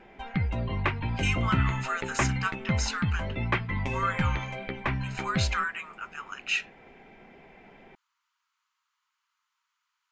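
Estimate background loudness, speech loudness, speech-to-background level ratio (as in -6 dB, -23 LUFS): -30.5 LUFS, -32.5 LUFS, -2.0 dB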